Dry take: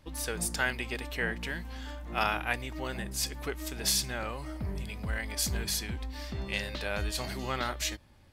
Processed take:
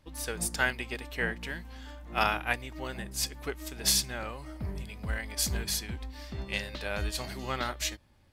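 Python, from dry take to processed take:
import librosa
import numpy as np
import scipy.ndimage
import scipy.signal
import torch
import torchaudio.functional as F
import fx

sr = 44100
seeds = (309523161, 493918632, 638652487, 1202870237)

y = fx.upward_expand(x, sr, threshold_db=-40.0, expansion=1.5)
y = F.gain(torch.from_numpy(y), 3.0).numpy()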